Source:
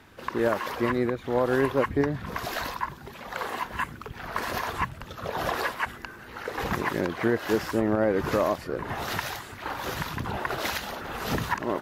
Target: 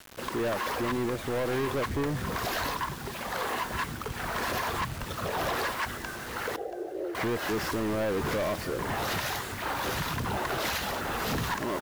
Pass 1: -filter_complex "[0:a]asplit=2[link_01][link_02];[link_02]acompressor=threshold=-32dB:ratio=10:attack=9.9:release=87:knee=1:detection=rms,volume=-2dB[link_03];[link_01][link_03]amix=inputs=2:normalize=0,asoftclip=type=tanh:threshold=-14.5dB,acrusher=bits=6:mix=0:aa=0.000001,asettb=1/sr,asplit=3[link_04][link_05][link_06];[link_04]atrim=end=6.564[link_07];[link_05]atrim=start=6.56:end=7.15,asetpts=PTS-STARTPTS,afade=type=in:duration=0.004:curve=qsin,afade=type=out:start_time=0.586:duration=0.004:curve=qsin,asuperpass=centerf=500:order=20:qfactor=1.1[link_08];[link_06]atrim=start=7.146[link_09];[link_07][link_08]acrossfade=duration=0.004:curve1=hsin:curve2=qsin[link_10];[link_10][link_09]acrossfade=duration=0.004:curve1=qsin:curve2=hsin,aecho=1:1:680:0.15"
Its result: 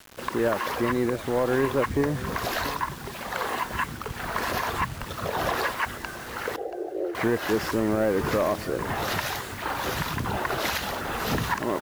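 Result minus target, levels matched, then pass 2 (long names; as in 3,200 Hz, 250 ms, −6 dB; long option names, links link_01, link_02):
soft clipping: distortion −11 dB
-filter_complex "[0:a]asplit=2[link_01][link_02];[link_02]acompressor=threshold=-32dB:ratio=10:attack=9.9:release=87:knee=1:detection=rms,volume=-2dB[link_03];[link_01][link_03]amix=inputs=2:normalize=0,asoftclip=type=tanh:threshold=-25.5dB,acrusher=bits=6:mix=0:aa=0.000001,asettb=1/sr,asplit=3[link_04][link_05][link_06];[link_04]atrim=end=6.564[link_07];[link_05]atrim=start=6.56:end=7.15,asetpts=PTS-STARTPTS,afade=type=in:duration=0.004:curve=qsin,afade=type=out:start_time=0.586:duration=0.004:curve=qsin,asuperpass=centerf=500:order=20:qfactor=1.1[link_08];[link_06]atrim=start=7.146[link_09];[link_07][link_08]acrossfade=duration=0.004:curve1=hsin:curve2=qsin[link_10];[link_10][link_09]acrossfade=duration=0.004:curve1=qsin:curve2=hsin,aecho=1:1:680:0.15"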